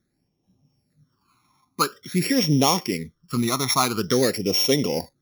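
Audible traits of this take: a buzz of ramps at a fixed pitch in blocks of 8 samples; phasing stages 12, 0.48 Hz, lowest notch 500–1500 Hz

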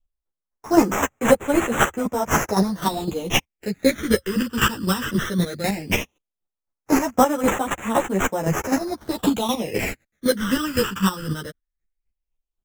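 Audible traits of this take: aliases and images of a low sample rate 4600 Hz, jitter 0%; phasing stages 12, 0.16 Hz, lowest notch 690–4700 Hz; chopped level 3.9 Hz, depth 65%, duty 20%; a shimmering, thickened sound

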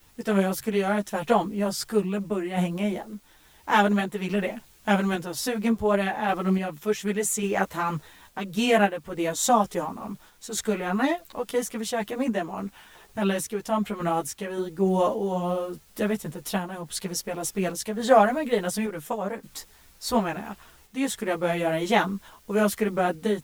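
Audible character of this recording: a quantiser's noise floor 10-bit, dither triangular; random-step tremolo; a shimmering, thickened sound

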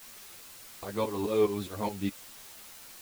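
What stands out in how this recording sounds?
tremolo saw up 4.8 Hz, depth 80%; a quantiser's noise floor 8-bit, dither triangular; a shimmering, thickened sound

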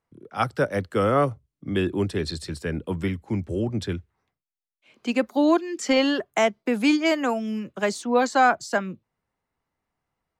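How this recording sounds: noise floor -87 dBFS; spectral tilt -4.5 dB/oct

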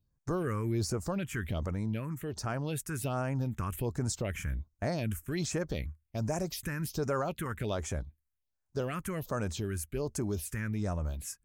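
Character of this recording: phasing stages 4, 1.3 Hz, lowest notch 630–3600 Hz

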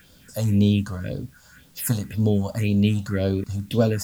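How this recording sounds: phasing stages 4, 1.9 Hz, lowest notch 350–2000 Hz; a quantiser's noise floor 10-bit, dither triangular

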